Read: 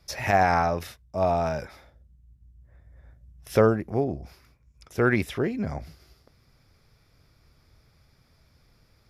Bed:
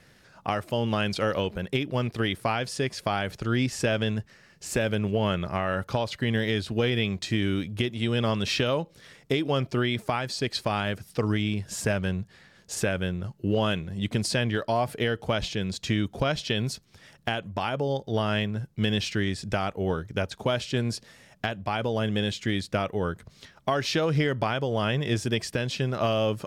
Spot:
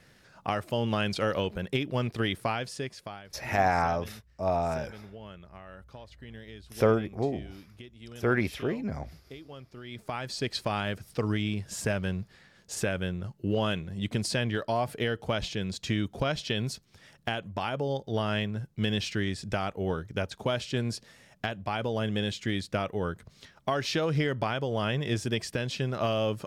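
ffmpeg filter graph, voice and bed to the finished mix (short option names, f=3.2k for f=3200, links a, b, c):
-filter_complex "[0:a]adelay=3250,volume=-4dB[a];[1:a]volume=15dB,afade=t=out:st=2.37:d=0.86:silence=0.125893,afade=t=in:st=9.83:d=0.56:silence=0.141254[b];[a][b]amix=inputs=2:normalize=0"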